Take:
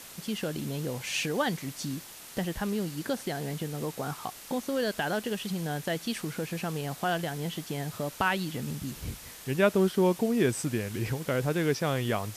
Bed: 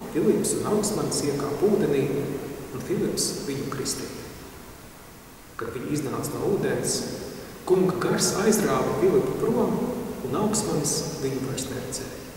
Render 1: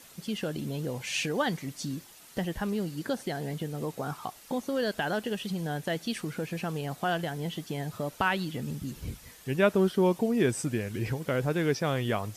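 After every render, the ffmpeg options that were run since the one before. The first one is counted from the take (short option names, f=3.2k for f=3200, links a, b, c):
-af "afftdn=nr=8:nf=-47"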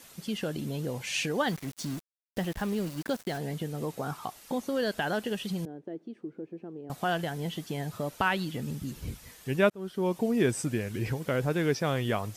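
-filter_complex "[0:a]asettb=1/sr,asplit=3[a][b][c];[a]atrim=end=1.474[d];[b]atrim=start=1.47:end=3.38,asetpts=PTS-STARTPTS,afade=t=in:d=0.004:c=qsin,afade=t=out:st=1.906:d=0.004:c=qsin,aeval=exprs='val(0)*gte(abs(val(0)),0.01)':c=same[e];[c]atrim=start=3.376[f];[d][e]acrossfade=d=0.004:c1=hsin:c2=qsin[g];[g][f]acrossfade=d=0.004:c1=qsin:c2=hsin,asettb=1/sr,asplit=3[h][i][j];[h]atrim=end=5.654[k];[i]atrim=start=5.65:end=6.9,asetpts=PTS-STARTPTS,afade=t=in:d=0.004:c=qsin,afade=t=out:st=1.246:d=0.004:c=qsin,bandpass=f=340:t=q:w=3.5[l];[j]atrim=start=6.896[m];[k][l]acrossfade=d=0.004:c1=hsin:c2=qsin[n];[n][m]acrossfade=d=0.004:c1=qsin:c2=hsin,asplit=2[o][p];[o]atrim=end=9.7,asetpts=PTS-STARTPTS,afade=t=out:st=9.696:d=0.004:c=hsin[q];[p]atrim=start=9.7,asetpts=PTS-STARTPTS,afade=t=in:d=0.6[r];[q][r]concat=n=2:v=0:a=1"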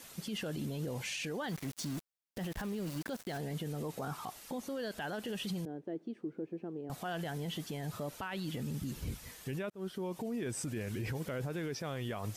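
-af "acompressor=threshold=-30dB:ratio=4,alimiter=level_in=6.5dB:limit=-24dB:level=0:latency=1:release=15,volume=-6.5dB"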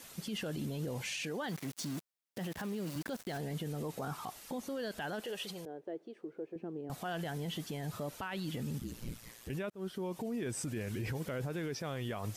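-filter_complex "[0:a]asettb=1/sr,asplit=3[a][b][c];[a]atrim=end=1.244[d];[b]atrim=start=1.24:end=2.96,asetpts=PTS-STARTPTS,afade=t=in:d=0.004:c=qsin,afade=t=out:st=1.716:d=0.004:c=qsin,highpass=120[e];[c]atrim=start=2.956[f];[d][e]acrossfade=d=0.004:c1=hsin:c2=qsin[g];[g][f]acrossfade=d=0.004:c1=qsin:c2=hsin,asettb=1/sr,asplit=3[h][i][j];[h]atrim=end=5.204[k];[i]atrim=start=5.2:end=6.56,asetpts=PTS-STARTPTS,afade=t=in:d=0.004:c=qsin,afade=t=out:st=1.356:d=0.004:c=qsin,lowshelf=f=330:t=q:w=1.5:g=-9[l];[j]atrim=start=6.556[m];[k][l]acrossfade=d=0.004:c1=hsin:c2=qsin[n];[n][m]acrossfade=d=0.004:c1=qsin:c2=hsin,asettb=1/sr,asplit=3[o][p][q];[o]atrim=end=8.784[r];[p]atrim=start=8.78:end=9.5,asetpts=PTS-STARTPTS,afade=t=in:d=0.004:c=qsin,afade=t=out:st=0.716:d=0.004:c=qsin,aeval=exprs='val(0)*sin(2*PI*58*n/s)':c=same[s];[q]atrim=start=9.496[t];[r][s]acrossfade=d=0.004:c1=hsin:c2=qsin[u];[u][t]acrossfade=d=0.004:c1=qsin:c2=hsin"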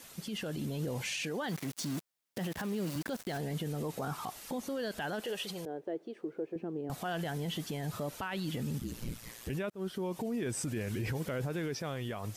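-af "dynaudnorm=f=200:g=9:m=5.5dB,alimiter=level_in=4dB:limit=-24dB:level=0:latency=1:release=320,volume=-4dB"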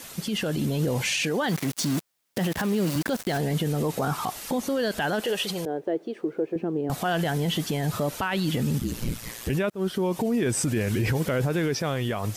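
-af "volume=10.5dB"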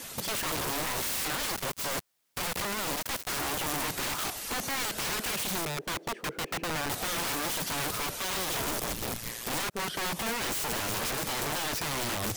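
-af "aeval=exprs='(mod(22.4*val(0)+1,2)-1)/22.4':c=same"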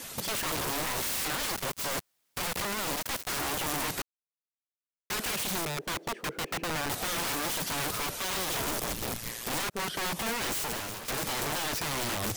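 -filter_complex "[0:a]asplit=4[a][b][c][d];[a]atrim=end=4.02,asetpts=PTS-STARTPTS,afade=t=out:st=4.016:d=0.004:c=hsin[e];[b]atrim=start=4.02:end=5.1,asetpts=PTS-STARTPTS,volume=0[f];[c]atrim=start=5.1:end=11.08,asetpts=PTS-STARTPTS,afade=t=in:d=0.004:c=hsin,afade=t=out:st=5.48:d=0.5:silence=0.237137[g];[d]atrim=start=11.08,asetpts=PTS-STARTPTS,afade=t=in:d=0.004:c=hsin:silence=0.237137[h];[e][f][g][h]concat=n=4:v=0:a=1"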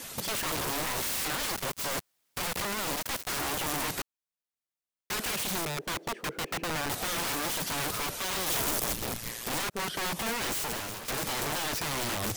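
-filter_complex "[0:a]asettb=1/sr,asplit=3[a][b][c];[a]atrim=end=8.464[d];[b]atrim=start=8.46:end=8.96,asetpts=PTS-STARTPTS,afade=t=in:d=0.004:c=qsin,afade=t=out:st=0.496:d=0.004:c=qsin,highshelf=f=5.8k:g=5.5[e];[c]atrim=start=8.956[f];[d][e]acrossfade=d=0.004:c1=hsin:c2=qsin[g];[g][f]acrossfade=d=0.004:c1=qsin:c2=hsin"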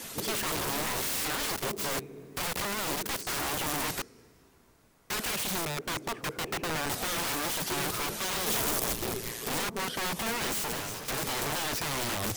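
-filter_complex "[1:a]volume=-19.5dB[a];[0:a][a]amix=inputs=2:normalize=0"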